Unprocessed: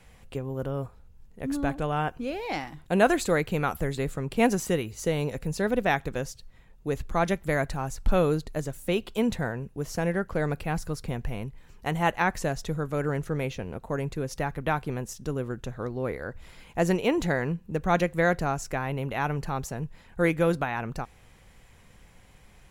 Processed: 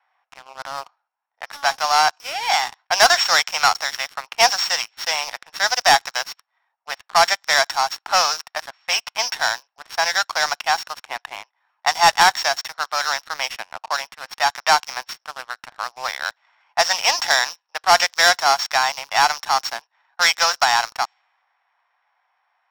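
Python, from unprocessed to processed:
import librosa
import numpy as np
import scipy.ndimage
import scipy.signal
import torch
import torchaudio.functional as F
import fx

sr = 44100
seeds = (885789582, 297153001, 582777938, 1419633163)

y = np.r_[np.sort(x[:len(x) // 8 * 8].reshape(-1, 8), axis=1).ravel(), x[len(x) // 8 * 8:]]
y = scipy.signal.sosfilt(scipy.signal.butter(8, 730.0, 'highpass', fs=sr, output='sos'), y)
y = fx.env_lowpass(y, sr, base_hz=1500.0, full_db=-29.5)
y = scipy.signal.sosfilt(scipy.signal.cheby1(8, 1.0, 8200.0, 'lowpass', fs=sr, output='sos'), y)
y = fx.leveller(y, sr, passes=3)
y = y * librosa.db_to_amplitude(5.5)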